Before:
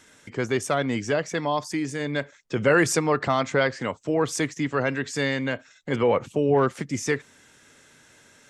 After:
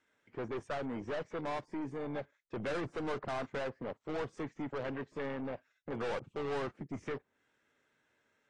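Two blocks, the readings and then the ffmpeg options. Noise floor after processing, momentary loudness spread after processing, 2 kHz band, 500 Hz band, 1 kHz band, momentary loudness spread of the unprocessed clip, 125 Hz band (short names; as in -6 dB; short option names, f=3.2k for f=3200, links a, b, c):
-78 dBFS, 6 LU, -17.5 dB, -14.0 dB, -14.0 dB, 9 LU, -16.0 dB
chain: -filter_complex "[0:a]afwtdn=0.0447,bass=f=250:g=-7,treble=f=4k:g=-15,acrossover=split=1200[a][b];[a]aeval=exprs='(tanh(44.7*val(0)+0.3)-tanh(0.3))/44.7':c=same[c];[b]acompressor=threshold=-44dB:ratio=20[d];[c][d]amix=inputs=2:normalize=0,volume=-2.5dB" -ar 22050 -c:a aac -b:a 32k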